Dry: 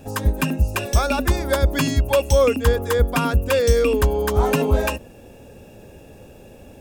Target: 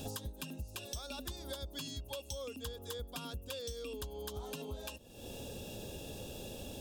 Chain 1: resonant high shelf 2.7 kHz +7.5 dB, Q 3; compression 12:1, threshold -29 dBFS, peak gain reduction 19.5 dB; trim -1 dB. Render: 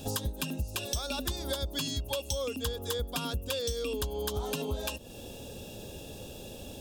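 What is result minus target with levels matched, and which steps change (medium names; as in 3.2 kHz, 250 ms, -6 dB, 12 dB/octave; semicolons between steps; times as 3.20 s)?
compression: peak gain reduction -9.5 dB
change: compression 12:1, threshold -39.5 dBFS, peak gain reduction 29 dB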